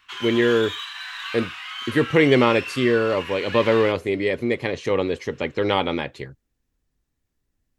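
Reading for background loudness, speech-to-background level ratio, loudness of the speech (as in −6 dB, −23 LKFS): −32.0 LKFS, 10.5 dB, −21.5 LKFS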